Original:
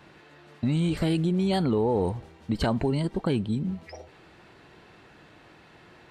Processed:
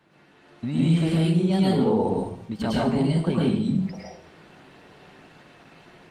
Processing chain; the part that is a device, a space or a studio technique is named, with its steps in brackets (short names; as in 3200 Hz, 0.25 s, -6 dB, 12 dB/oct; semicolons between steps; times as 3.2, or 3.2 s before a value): 2.5–3.19 dynamic EQ 330 Hz, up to -3 dB, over -43 dBFS, Q 3; far-field microphone of a smart speaker (reverb RT60 0.60 s, pre-delay 0.101 s, DRR -4.5 dB; HPF 100 Hz 12 dB/oct; AGC gain up to 7 dB; gain -8 dB; Opus 24 kbps 48000 Hz)